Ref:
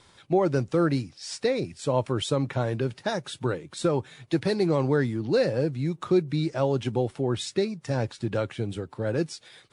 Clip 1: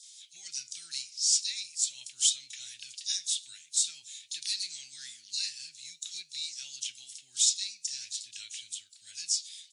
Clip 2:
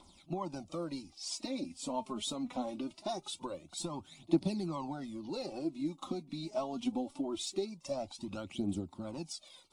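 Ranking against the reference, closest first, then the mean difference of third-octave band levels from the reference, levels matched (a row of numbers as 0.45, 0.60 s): 2, 1; 5.5, 20.0 dB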